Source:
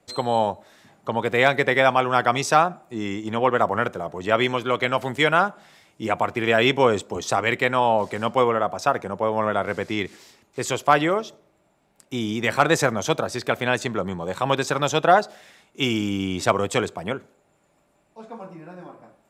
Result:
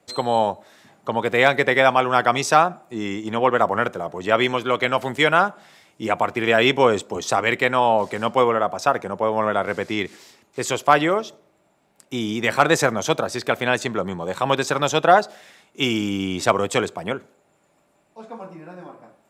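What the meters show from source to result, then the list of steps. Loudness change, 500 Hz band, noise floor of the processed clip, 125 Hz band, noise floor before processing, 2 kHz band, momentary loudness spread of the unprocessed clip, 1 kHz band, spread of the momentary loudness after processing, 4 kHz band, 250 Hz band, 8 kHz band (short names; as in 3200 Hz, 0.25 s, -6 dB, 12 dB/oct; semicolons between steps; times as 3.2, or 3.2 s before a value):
+2.0 dB, +2.0 dB, -63 dBFS, -0.5 dB, -65 dBFS, +2.0 dB, 13 LU, +2.0 dB, 13 LU, +2.0 dB, +1.0 dB, +2.0 dB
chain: low shelf 72 Hz -11.5 dB; gain +2 dB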